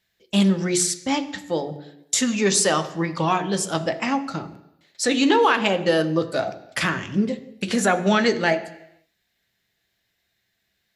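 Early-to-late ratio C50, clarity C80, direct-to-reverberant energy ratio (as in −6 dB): 13.5 dB, 16.0 dB, 7.5 dB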